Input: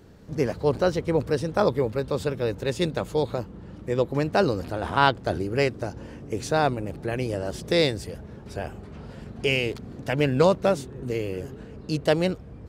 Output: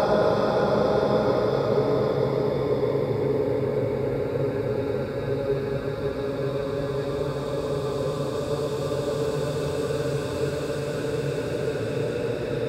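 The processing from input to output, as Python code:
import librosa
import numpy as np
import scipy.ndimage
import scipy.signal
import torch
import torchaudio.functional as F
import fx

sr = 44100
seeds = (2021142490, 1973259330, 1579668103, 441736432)

y = fx.paulstretch(x, sr, seeds[0], factor=17.0, window_s=0.5, from_s=1.64)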